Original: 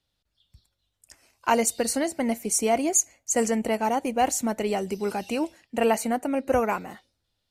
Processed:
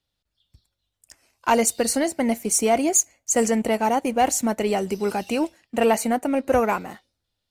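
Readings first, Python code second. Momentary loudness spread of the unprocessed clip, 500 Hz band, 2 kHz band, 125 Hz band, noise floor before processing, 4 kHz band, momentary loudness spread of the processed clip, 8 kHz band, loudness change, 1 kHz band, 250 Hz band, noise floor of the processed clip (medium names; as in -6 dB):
7 LU, +3.5 dB, +3.0 dB, +3.5 dB, -79 dBFS, +3.5 dB, 7 LU, +3.0 dB, +3.5 dB, +3.0 dB, +3.5 dB, -80 dBFS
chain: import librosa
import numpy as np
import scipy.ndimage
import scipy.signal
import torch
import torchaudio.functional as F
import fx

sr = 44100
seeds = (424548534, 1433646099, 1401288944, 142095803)

y = fx.leveller(x, sr, passes=1)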